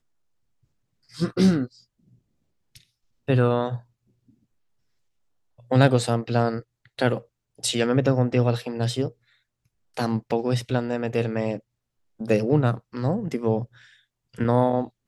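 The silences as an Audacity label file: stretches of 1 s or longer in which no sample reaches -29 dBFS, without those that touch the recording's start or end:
1.650000	3.290000	silence
3.770000	5.710000	silence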